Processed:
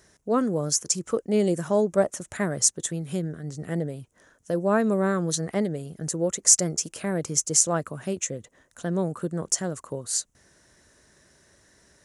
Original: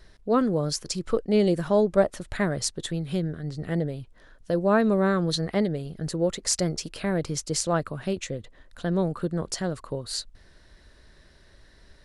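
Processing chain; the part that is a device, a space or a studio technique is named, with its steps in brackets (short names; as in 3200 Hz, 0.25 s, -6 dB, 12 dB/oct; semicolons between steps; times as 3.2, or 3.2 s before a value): budget condenser microphone (HPF 110 Hz 12 dB/oct; resonant high shelf 5300 Hz +7 dB, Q 3); gain -1 dB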